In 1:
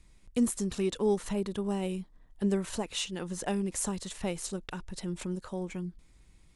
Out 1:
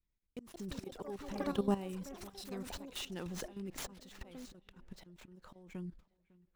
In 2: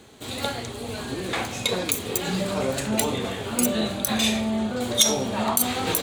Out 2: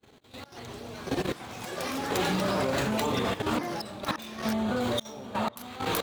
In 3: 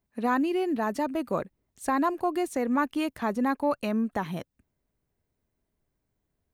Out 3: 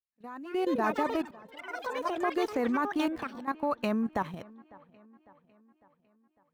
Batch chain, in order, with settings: median filter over 5 samples; gate -49 dBFS, range -30 dB; dynamic bell 1.1 kHz, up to +5 dB, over -42 dBFS, Q 1.8; in parallel at -2.5 dB: compression 6:1, threshold -35 dBFS; on the sum: slow attack 541 ms; level held to a coarse grid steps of 14 dB; feedback echo behind a low-pass 552 ms, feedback 52%, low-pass 2.8 kHz, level -23 dB; ever faster or slower copies 282 ms, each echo +6 st, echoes 3, each echo -6 dB

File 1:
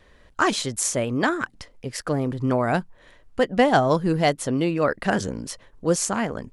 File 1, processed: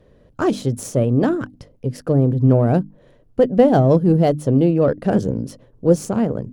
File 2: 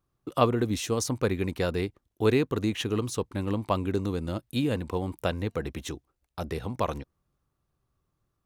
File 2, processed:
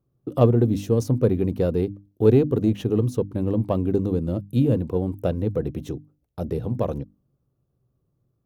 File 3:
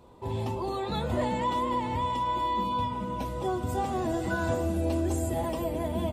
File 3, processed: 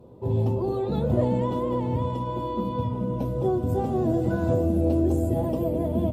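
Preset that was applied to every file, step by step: hum notches 50/100/150/200/250/300 Hz; Chebyshev shaper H 8 -29 dB, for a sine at -5.5 dBFS; graphic EQ 125/250/500/1000/2000/4000/8000 Hz +11/+5/+7/-5/-9/-5/-9 dB

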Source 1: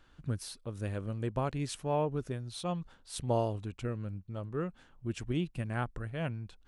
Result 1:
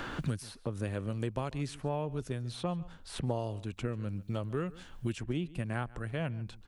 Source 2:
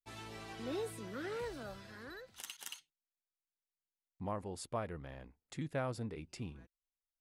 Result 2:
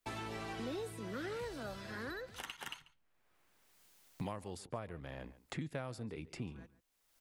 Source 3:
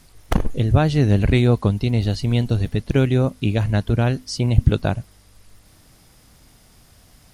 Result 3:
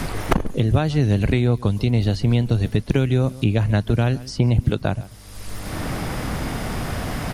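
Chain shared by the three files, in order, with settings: echo from a far wall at 24 m, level -22 dB; three bands compressed up and down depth 100%; trim -1 dB

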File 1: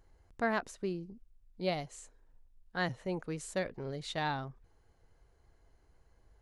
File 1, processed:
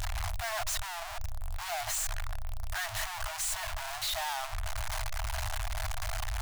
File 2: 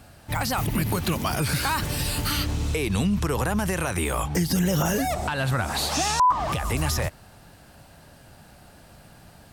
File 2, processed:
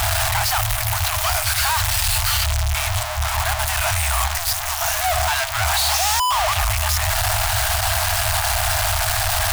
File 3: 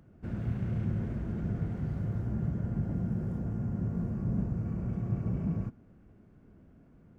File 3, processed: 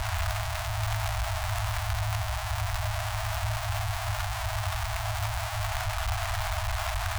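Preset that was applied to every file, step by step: one-bit comparator; FFT band-reject 110–610 Hz; trim +7.5 dB

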